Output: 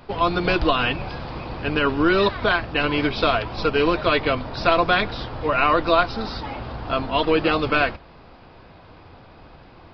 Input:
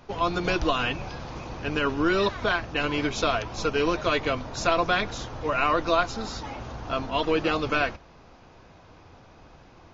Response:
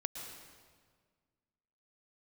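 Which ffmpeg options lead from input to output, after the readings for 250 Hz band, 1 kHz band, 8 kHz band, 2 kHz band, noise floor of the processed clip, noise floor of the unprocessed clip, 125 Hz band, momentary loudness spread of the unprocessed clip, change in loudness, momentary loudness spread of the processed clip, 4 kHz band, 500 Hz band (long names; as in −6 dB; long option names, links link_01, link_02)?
+5.0 dB, +5.0 dB, can't be measured, +5.0 dB, −47 dBFS, −52 dBFS, +5.0 dB, 11 LU, +5.0 dB, 11 LU, +5.0 dB, +5.0 dB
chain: -af "aresample=11025,aresample=44100,volume=5dB"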